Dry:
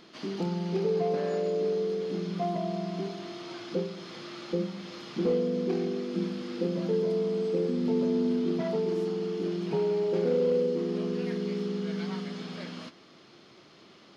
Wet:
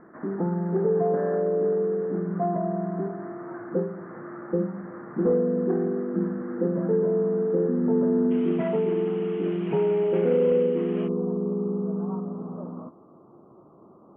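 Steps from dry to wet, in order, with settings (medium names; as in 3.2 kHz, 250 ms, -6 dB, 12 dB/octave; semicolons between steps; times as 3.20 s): steep low-pass 1.8 kHz 72 dB/octave, from 8.30 s 3 kHz, from 11.07 s 1.2 kHz; trim +4.5 dB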